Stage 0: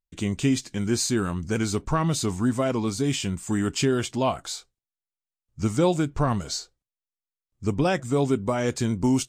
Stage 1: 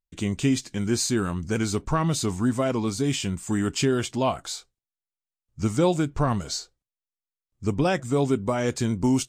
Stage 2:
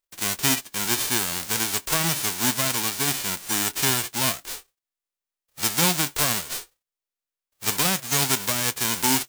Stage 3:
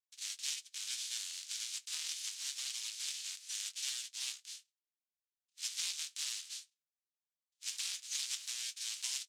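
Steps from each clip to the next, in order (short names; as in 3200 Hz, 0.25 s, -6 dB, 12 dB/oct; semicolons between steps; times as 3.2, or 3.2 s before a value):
nothing audible
spectral whitening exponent 0.1
ring modulator 120 Hz; one-sided clip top -27 dBFS; Butterworth band-pass 4900 Hz, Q 0.97; gain -7 dB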